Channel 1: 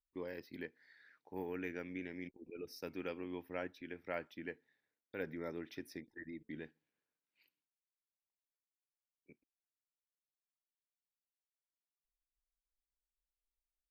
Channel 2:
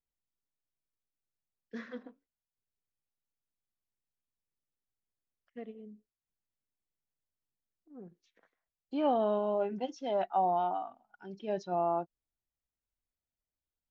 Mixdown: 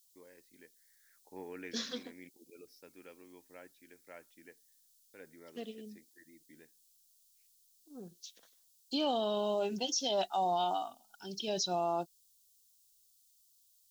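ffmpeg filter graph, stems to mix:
-filter_complex "[0:a]lowshelf=f=150:g=-10.5,volume=0.794,afade=t=in:st=1:d=0.24:silence=0.298538,afade=t=out:st=2.19:d=0.63:silence=0.375837[s0];[1:a]aexciter=amount=10.3:drive=8.7:freq=3200,volume=1.06,asplit=2[s1][s2];[s2]apad=whole_len=613020[s3];[s0][s3]sidechaincompress=threshold=0.01:ratio=8:attack=16:release=740[s4];[s4][s1]amix=inputs=2:normalize=0,alimiter=limit=0.0631:level=0:latency=1:release=27"

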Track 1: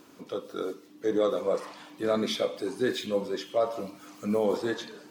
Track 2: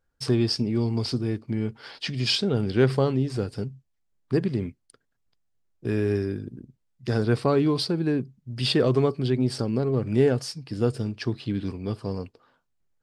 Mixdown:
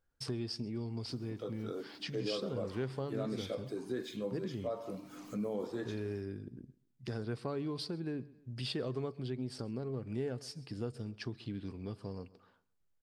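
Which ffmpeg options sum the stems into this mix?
-filter_complex "[0:a]lowshelf=f=370:g=9.5,adelay=1100,volume=0.596[s0];[1:a]volume=0.531,asplit=2[s1][s2];[s2]volume=0.0668,aecho=0:1:132|264|396|528:1|0.28|0.0784|0.022[s3];[s0][s1][s3]amix=inputs=3:normalize=0,acompressor=threshold=0.00708:ratio=2"

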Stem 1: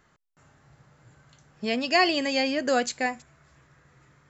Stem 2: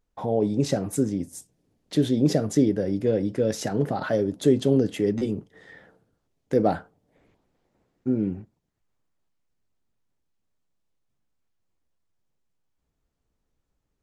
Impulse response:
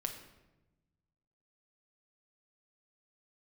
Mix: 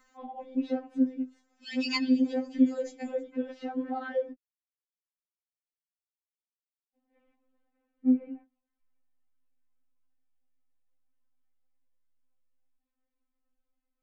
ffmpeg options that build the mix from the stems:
-filter_complex "[0:a]volume=1[s0];[1:a]lowpass=f=2900:w=0.5412,lowpass=f=2900:w=1.3066,volume=0.562,asplit=3[s1][s2][s3];[s1]atrim=end=4.33,asetpts=PTS-STARTPTS,afade=t=out:st=4.326:d=0.004:c=hsin[s4];[s2]atrim=start=4.33:end=6.95,asetpts=PTS-STARTPTS,volume=0[s5];[s3]atrim=start=6.95,asetpts=PTS-STARTPTS,afade=t=in:d=0.004:c=hsin[s6];[s4][s5][s6]concat=n=3:v=0:a=1,asplit=2[s7][s8];[s8]apad=whole_len=189504[s9];[s0][s9]sidechaincompress=threshold=0.00631:ratio=8:attack=5.7:release=634[s10];[s10][s7]amix=inputs=2:normalize=0,highshelf=f=10000:g=11.5,afftfilt=real='re*3.46*eq(mod(b,12),0)':imag='im*3.46*eq(mod(b,12),0)':win_size=2048:overlap=0.75"

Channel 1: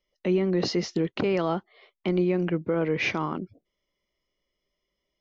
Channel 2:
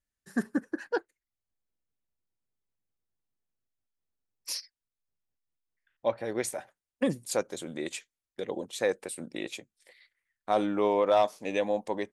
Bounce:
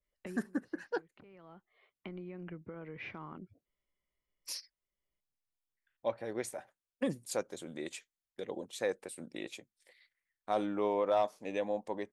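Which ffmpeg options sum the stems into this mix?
-filter_complex "[0:a]acompressor=threshold=0.0282:ratio=6,lowpass=2100,equalizer=f=410:w=0.39:g=-8,volume=0.596[s0];[1:a]volume=0.501,asplit=2[s1][s2];[s2]apad=whole_len=229437[s3];[s0][s3]sidechaincompress=threshold=0.00447:ratio=10:attack=20:release=900[s4];[s4][s1]amix=inputs=2:normalize=0,adynamicequalizer=threshold=0.00316:dfrequency=2000:dqfactor=0.7:tfrequency=2000:tqfactor=0.7:attack=5:release=100:ratio=0.375:range=2.5:mode=cutabove:tftype=highshelf"

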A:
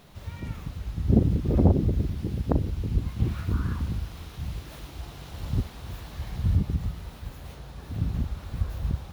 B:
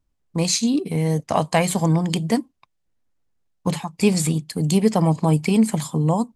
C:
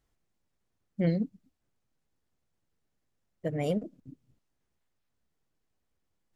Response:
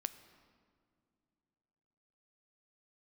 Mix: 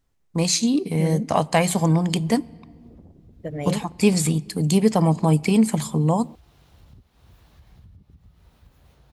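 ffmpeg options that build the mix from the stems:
-filter_complex "[0:a]acompressor=threshold=0.0224:ratio=8,adelay=1400,volume=0.211[s0];[1:a]volume=0.708,asplit=3[s1][s2][s3];[s2]volume=0.473[s4];[2:a]alimiter=limit=0.0841:level=0:latency=1,volume=1.26[s5];[s3]apad=whole_len=464231[s6];[s0][s6]sidechaincompress=threshold=0.0794:ratio=8:attack=16:release=683[s7];[3:a]atrim=start_sample=2205[s8];[s4][s8]afir=irnorm=-1:irlink=0[s9];[s7][s1][s5][s9]amix=inputs=4:normalize=0"

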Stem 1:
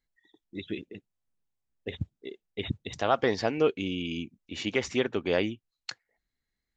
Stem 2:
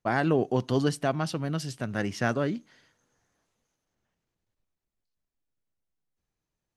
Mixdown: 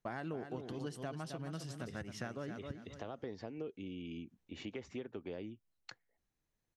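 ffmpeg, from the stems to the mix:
-filter_complex "[0:a]highshelf=f=2200:g=-12,acrossover=split=460|3000[s0][s1][s2];[s1]acompressor=threshold=0.0178:ratio=6[s3];[s0][s3][s2]amix=inputs=3:normalize=0,volume=0.531,asplit=2[s4][s5];[1:a]bandreject=f=4600:w=21,volume=0.668,asplit=2[s6][s7];[s7]volume=0.335[s8];[s5]apad=whole_len=298264[s9];[s6][s9]sidechaincompress=threshold=0.00562:ratio=8:attack=44:release=101[s10];[s8]aecho=0:1:265|530|795|1060:1|0.22|0.0484|0.0106[s11];[s4][s10][s11]amix=inputs=3:normalize=0,acompressor=threshold=0.00708:ratio=3"

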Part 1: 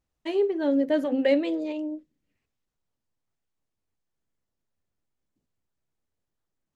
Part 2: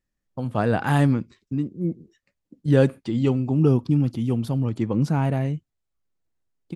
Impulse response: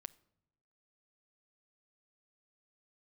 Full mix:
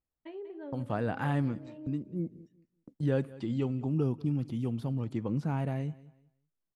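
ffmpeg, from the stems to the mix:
-filter_complex "[0:a]lowpass=2200,acompressor=threshold=0.02:ratio=2,volume=0.237,asplit=3[s0][s1][s2];[s1]volume=0.531[s3];[s2]volume=0.355[s4];[1:a]acrossover=split=3500[s5][s6];[s6]acompressor=threshold=0.00355:ratio=4:attack=1:release=60[s7];[s5][s7]amix=inputs=2:normalize=0,agate=range=0.0891:threshold=0.00398:ratio=16:detection=peak,adelay=350,volume=0.75,asplit=2[s8][s9];[s9]volume=0.0708[s10];[2:a]atrim=start_sample=2205[s11];[s3][s11]afir=irnorm=-1:irlink=0[s12];[s4][s10]amix=inputs=2:normalize=0,aecho=0:1:190|380|570:1|0.19|0.0361[s13];[s0][s8][s12][s13]amix=inputs=4:normalize=0,acompressor=threshold=0.00891:ratio=1.5"

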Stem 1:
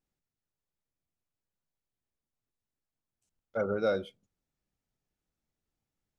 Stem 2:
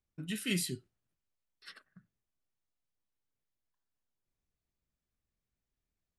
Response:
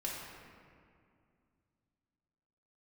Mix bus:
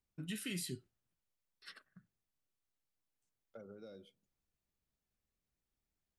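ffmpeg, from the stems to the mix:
-filter_complex "[0:a]acrossover=split=430|3000[s0][s1][s2];[s1]acompressor=threshold=0.00708:ratio=6[s3];[s0][s3][s2]amix=inputs=3:normalize=0,highpass=110,acompressor=threshold=0.01:ratio=12,volume=0.355[s4];[1:a]alimiter=level_in=1.88:limit=0.0631:level=0:latency=1:release=127,volume=0.531,volume=0.75[s5];[s4][s5]amix=inputs=2:normalize=0"

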